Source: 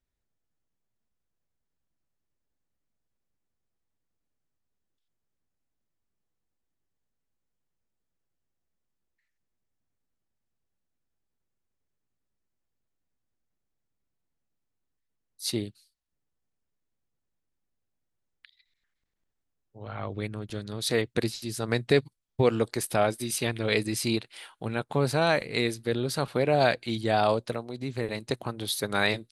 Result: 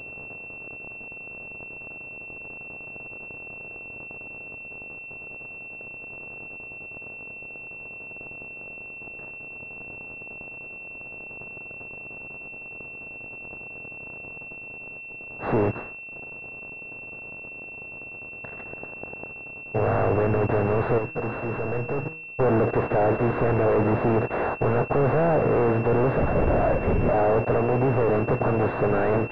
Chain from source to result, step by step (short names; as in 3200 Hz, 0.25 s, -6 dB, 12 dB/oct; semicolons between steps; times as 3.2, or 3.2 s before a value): per-bin compression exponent 0.4; sample leveller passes 5; 26.19–27.14 LPC vocoder at 8 kHz whisper; soft clip -8.5 dBFS, distortion -15 dB; low-pass opened by the level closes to 790 Hz, open at -9.5 dBFS; 20.98–22.4 resonator 160 Hz, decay 0.48 s, harmonics all, mix 60%; pulse-width modulation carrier 2700 Hz; gain -8 dB